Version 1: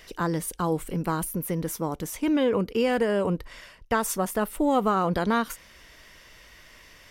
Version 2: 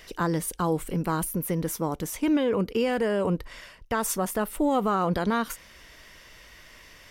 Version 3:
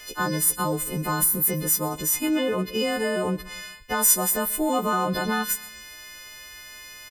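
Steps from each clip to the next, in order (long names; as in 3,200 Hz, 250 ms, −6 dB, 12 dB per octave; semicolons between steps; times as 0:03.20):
brickwall limiter −17 dBFS, peak gain reduction 4.5 dB; level +1 dB
every partial snapped to a pitch grid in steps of 3 semitones; repeating echo 129 ms, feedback 47%, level −21 dB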